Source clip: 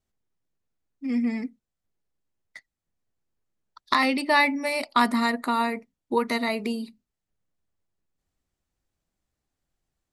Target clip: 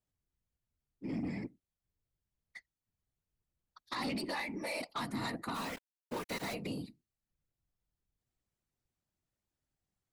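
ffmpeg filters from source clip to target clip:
ffmpeg -i in.wav -filter_complex "[0:a]asettb=1/sr,asplit=3[link_01][link_02][link_03];[link_01]atrim=end=3.964[link_04];[link_02]atrim=start=3.96:end=4.41,asetpts=PTS-STARTPTS,afade=type=in:duration=0.004:curve=qsin,afade=type=out:start_time=0.446:duration=0.004:curve=qsin,aecho=1:1:3.6:0.68,atrim=end_sample=19845[link_05];[link_03]atrim=start=4.406[link_06];[link_04][link_05]acrossfade=duration=0.004:curve1=hsin:curve2=qsin[link_07];[link_07][link_06]acrossfade=duration=0.004:curve1=qsin:curve2=hsin,alimiter=limit=-11.5dB:level=0:latency=1:release=267,acrossover=split=160|3000[link_08][link_09][link_10];[link_09]acompressor=threshold=-27dB:ratio=4[link_11];[link_08][link_11][link_10]amix=inputs=3:normalize=0,asplit=3[link_12][link_13][link_14];[link_12]afade=type=out:start_time=5.54:duration=0.02[link_15];[link_13]aeval=exprs='val(0)*gte(abs(val(0)),0.0316)':channel_layout=same,afade=type=in:start_time=5.54:duration=0.02,afade=type=out:start_time=6.53:duration=0.02[link_16];[link_14]afade=type=in:start_time=6.53:duration=0.02[link_17];[link_15][link_16][link_17]amix=inputs=3:normalize=0,afftfilt=real='hypot(re,im)*cos(2*PI*random(0))':imag='hypot(re,im)*sin(2*PI*random(1))':win_size=512:overlap=0.75,asoftclip=type=tanh:threshold=-29dB,volume=-1.5dB" out.wav

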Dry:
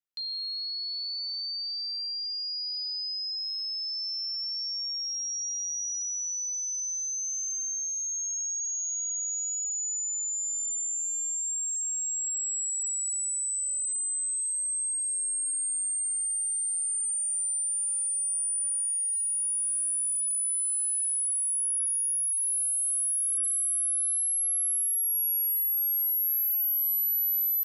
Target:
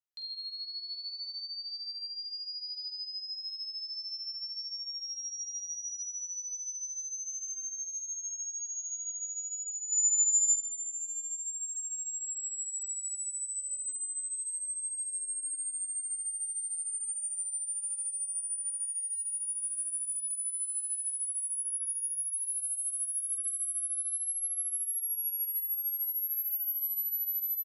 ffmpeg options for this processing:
ffmpeg -i in.wav -filter_complex "[0:a]asettb=1/sr,asplit=3[link_01][link_02][link_03];[link_01]atrim=end=9.924[link_04];[link_02]atrim=start=9.92:end=10.56,asetpts=PTS-STARTPTS,afade=type=in:duration=0.004:curve=qsin,afade=type=out:start_time=0.636:duration=0.004:curve=qsin,equalizer=frequency=7200:width=3.2:gain=12[link_05];[link_03]atrim=start=10.556[link_06];[link_04][link_05]acrossfade=duration=0.004:curve1=hsin:curve2=qsin[link_07];[link_07][link_06]acrossfade=duration=0.004:curve1=qsin:curve2=hsin,aecho=1:1:22|47:0.188|0.422,volume=-7dB" out.wav

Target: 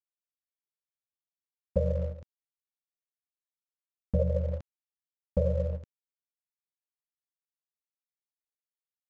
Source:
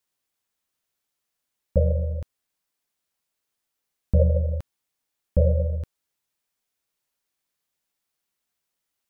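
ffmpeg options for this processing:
ffmpeg -i in.wav -af "highpass=97,aresample=16000,aeval=exprs='sgn(val(0))*max(abs(val(0))-0.00335,0)':channel_layout=same,aresample=44100,agate=range=-10dB:threshold=-31dB:ratio=16:detection=peak,acompressor=threshold=-23dB:ratio=3" out.wav

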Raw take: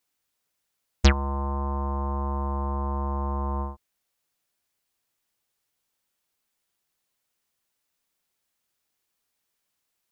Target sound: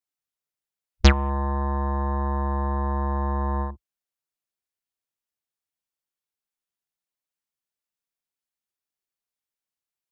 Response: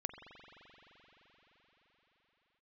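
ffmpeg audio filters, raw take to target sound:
-af "afwtdn=0.00891,volume=3dB"

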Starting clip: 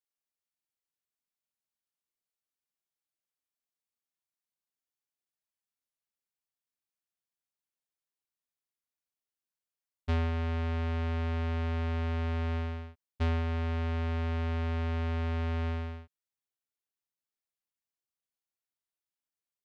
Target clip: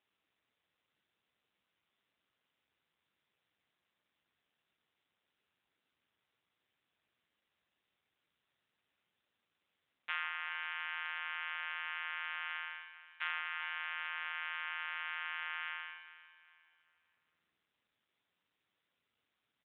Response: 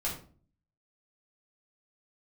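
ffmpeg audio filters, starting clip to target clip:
-filter_complex "[0:a]highpass=frequency=1300:width=0.5412,highpass=frequency=1300:width=1.3066,highshelf=frequency=2800:gain=-3,aecho=1:1:405|810|1215|1620:0.2|0.0738|0.0273|0.0101,asplit=2[link_01][link_02];[1:a]atrim=start_sample=2205[link_03];[link_02][link_03]afir=irnorm=-1:irlink=0,volume=-18dB[link_04];[link_01][link_04]amix=inputs=2:normalize=0,volume=6.5dB" -ar 8000 -c:a libopencore_amrnb -b:a 7950

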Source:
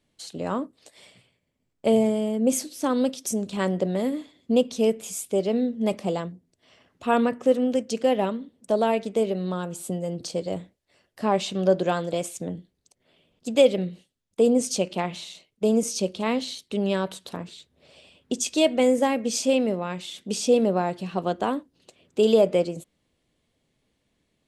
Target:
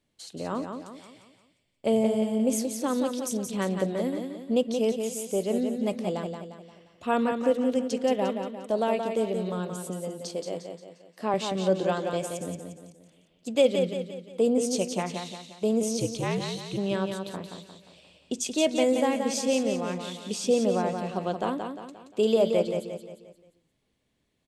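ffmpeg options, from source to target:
ffmpeg -i in.wav -filter_complex "[0:a]asettb=1/sr,asplit=3[link_01][link_02][link_03];[link_01]atrim=end=9.804[link_04];[link_02]atrim=start=9.8:end=11.34,asetpts=PTS-STARTPTS,afade=type=in:duration=0.004:curve=qsin,afade=type=out:start_time=1.536:duration=0.004:curve=qsin,highpass=220[link_05];[link_03]atrim=start=11.336[link_06];[link_04][link_05]acrossfade=duration=0.004:curve1=hsin:curve2=qsin[link_07];[link_07][link_06]acrossfade=duration=0.004:curve1=qsin:curve2=hsin,asplit=3[link_08][link_09][link_10];[link_08]afade=type=out:start_time=15.96:duration=0.02[link_11];[link_09]afreqshift=-67,afade=type=in:start_time=15.96:duration=0.02,afade=type=out:start_time=16.76:duration=0.02[link_12];[link_10]afade=type=in:start_time=16.76:duration=0.02[link_13];[link_11][link_12][link_13]amix=inputs=3:normalize=0,aecho=1:1:176|352|528|704|880:0.501|0.221|0.097|0.0427|0.0188,volume=-4dB" out.wav

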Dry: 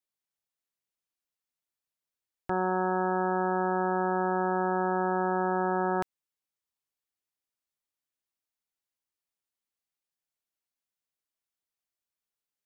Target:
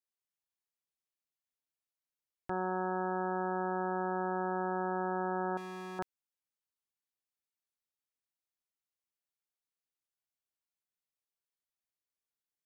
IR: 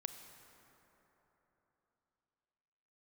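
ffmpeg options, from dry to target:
-filter_complex "[0:a]asettb=1/sr,asplit=3[link_01][link_02][link_03];[link_01]atrim=end=5.574[link_04];[link_02]atrim=start=5.57:end=5.99,asetpts=PTS-STARTPTS,afade=type=in:duration=0.004:curve=qsin,afade=type=out:start_time=0.416:duration=0.004:curve=qsin,asoftclip=type=hard:threshold=-35dB[link_05];[link_03]atrim=start=5.986[link_06];[link_04][link_05]acrossfade=duration=0.004:curve1=hsin:curve2=qsin[link_07];[link_07][link_06]acrossfade=duration=0.004:curve1=qsin:curve2=hsin,volume=-6.5dB"

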